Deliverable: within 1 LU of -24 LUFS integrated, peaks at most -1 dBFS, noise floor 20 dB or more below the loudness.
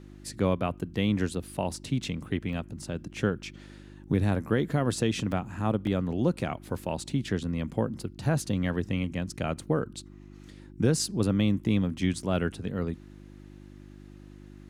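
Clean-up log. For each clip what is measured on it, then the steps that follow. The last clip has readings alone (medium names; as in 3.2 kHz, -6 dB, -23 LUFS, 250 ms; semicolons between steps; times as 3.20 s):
dropouts 3; longest dropout 1.2 ms; hum 50 Hz; highest harmonic 350 Hz; hum level -49 dBFS; loudness -29.5 LUFS; peak level -13.0 dBFS; loudness target -24.0 LUFS
-> interpolate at 2.53/5.32/5.87 s, 1.2 ms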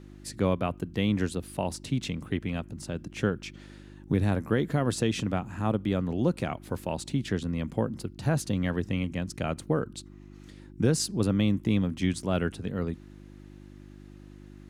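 dropouts 0; hum 50 Hz; highest harmonic 350 Hz; hum level -49 dBFS
-> de-hum 50 Hz, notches 7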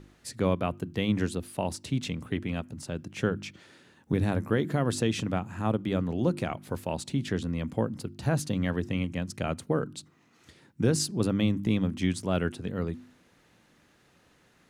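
hum not found; loudness -30.0 LUFS; peak level -12.0 dBFS; loudness target -24.0 LUFS
-> trim +6 dB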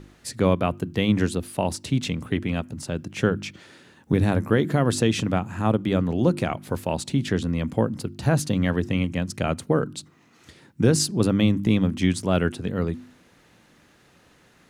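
loudness -24.0 LUFS; peak level -6.0 dBFS; noise floor -58 dBFS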